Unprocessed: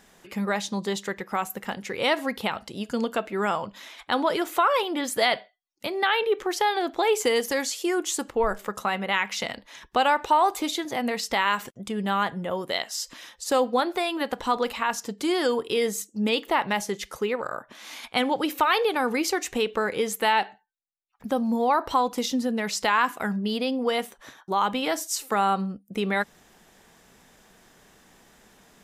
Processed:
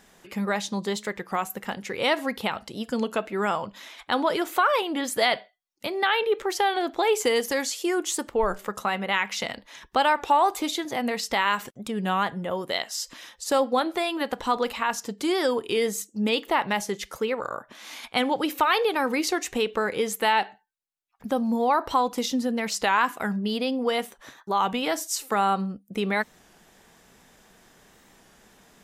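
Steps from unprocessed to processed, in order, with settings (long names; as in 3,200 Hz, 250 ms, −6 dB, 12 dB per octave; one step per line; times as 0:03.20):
wow of a warped record 33 1/3 rpm, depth 100 cents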